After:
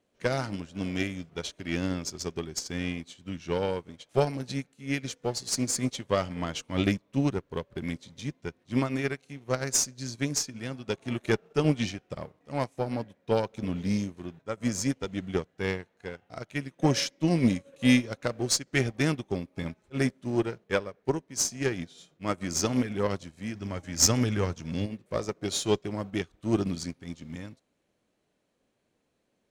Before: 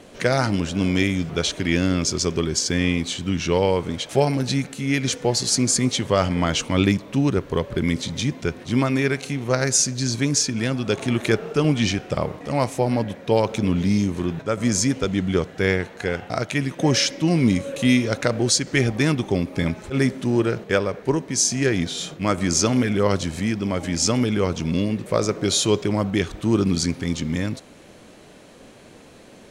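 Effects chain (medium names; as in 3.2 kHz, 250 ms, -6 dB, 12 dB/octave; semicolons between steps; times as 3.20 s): 23.54–24.86 s: fifteen-band graphic EQ 100 Hz +7 dB, 1.6 kHz +5 dB, 6.3 kHz +6 dB; valve stage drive 9 dB, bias 0.4; upward expansion 2.5:1, over -35 dBFS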